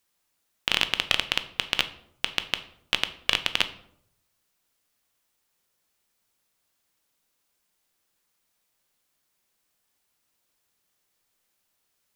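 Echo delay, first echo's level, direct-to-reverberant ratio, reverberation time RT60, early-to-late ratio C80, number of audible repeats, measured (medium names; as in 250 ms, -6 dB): no echo, no echo, 9.5 dB, 0.70 s, 17.5 dB, no echo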